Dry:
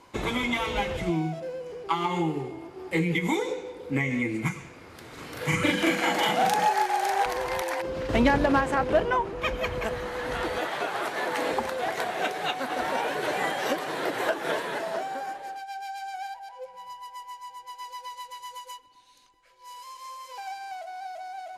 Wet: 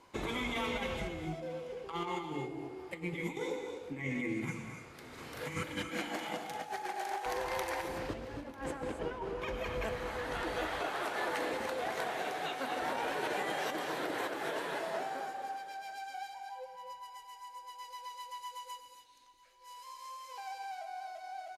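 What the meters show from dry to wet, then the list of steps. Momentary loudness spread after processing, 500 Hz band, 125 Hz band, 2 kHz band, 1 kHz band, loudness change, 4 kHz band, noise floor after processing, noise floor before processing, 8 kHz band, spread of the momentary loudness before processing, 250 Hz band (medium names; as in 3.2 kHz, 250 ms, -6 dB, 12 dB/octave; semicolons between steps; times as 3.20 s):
12 LU, -9.0 dB, -11.5 dB, -9.5 dB, -10.0 dB, -10.5 dB, -9.5 dB, -54 dBFS, -50 dBFS, -8.5 dB, 17 LU, -11.5 dB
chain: hum notches 60/120/180/240/300 Hz; dynamic bell 310 Hz, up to +5 dB, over -42 dBFS, Q 6.2; compressor with a negative ratio -28 dBFS, ratio -0.5; on a send: delay 946 ms -22 dB; on the sum: gated-style reverb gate 300 ms rising, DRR 5.5 dB; trim -9 dB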